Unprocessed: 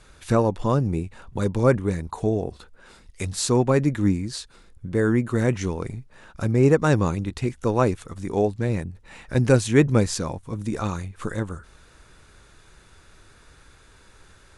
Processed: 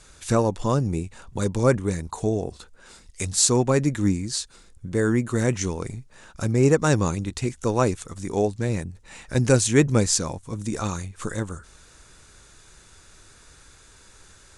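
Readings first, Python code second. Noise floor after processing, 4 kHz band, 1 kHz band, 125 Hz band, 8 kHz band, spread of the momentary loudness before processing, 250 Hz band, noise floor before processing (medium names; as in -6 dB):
-52 dBFS, +4.5 dB, -0.5 dB, -1.0 dB, +8.5 dB, 14 LU, -1.0 dB, -53 dBFS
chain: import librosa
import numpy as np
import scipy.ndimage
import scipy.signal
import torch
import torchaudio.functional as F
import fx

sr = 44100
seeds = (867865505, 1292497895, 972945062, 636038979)

y = fx.peak_eq(x, sr, hz=7200.0, db=10.5, octaves=1.3)
y = y * 10.0 ** (-1.0 / 20.0)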